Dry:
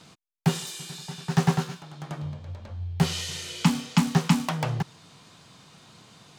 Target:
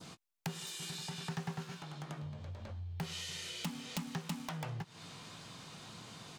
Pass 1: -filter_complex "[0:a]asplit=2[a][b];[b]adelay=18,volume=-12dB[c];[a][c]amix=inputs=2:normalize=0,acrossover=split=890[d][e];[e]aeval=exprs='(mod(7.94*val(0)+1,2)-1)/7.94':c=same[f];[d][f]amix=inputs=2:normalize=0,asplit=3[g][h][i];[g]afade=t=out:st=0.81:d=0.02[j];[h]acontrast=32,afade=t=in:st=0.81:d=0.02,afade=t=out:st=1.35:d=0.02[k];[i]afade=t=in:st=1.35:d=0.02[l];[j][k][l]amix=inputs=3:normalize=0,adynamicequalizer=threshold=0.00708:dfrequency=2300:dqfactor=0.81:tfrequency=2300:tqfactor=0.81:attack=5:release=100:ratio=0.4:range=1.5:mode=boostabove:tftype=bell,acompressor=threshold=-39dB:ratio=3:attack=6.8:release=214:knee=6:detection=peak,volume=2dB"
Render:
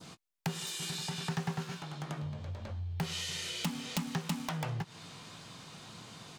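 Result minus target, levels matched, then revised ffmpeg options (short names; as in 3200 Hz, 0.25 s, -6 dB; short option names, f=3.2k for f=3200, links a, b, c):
compressor: peak gain reduction -5 dB
-filter_complex "[0:a]asplit=2[a][b];[b]adelay=18,volume=-12dB[c];[a][c]amix=inputs=2:normalize=0,acrossover=split=890[d][e];[e]aeval=exprs='(mod(7.94*val(0)+1,2)-1)/7.94':c=same[f];[d][f]amix=inputs=2:normalize=0,asplit=3[g][h][i];[g]afade=t=out:st=0.81:d=0.02[j];[h]acontrast=32,afade=t=in:st=0.81:d=0.02,afade=t=out:st=1.35:d=0.02[k];[i]afade=t=in:st=1.35:d=0.02[l];[j][k][l]amix=inputs=3:normalize=0,adynamicequalizer=threshold=0.00708:dfrequency=2300:dqfactor=0.81:tfrequency=2300:tqfactor=0.81:attack=5:release=100:ratio=0.4:range=1.5:mode=boostabove:tftype=bell,acompressor=threshold=-46.5dB:ratio=3:attack=6.8:release=214:knee=6:detection=peak,volume=2dB"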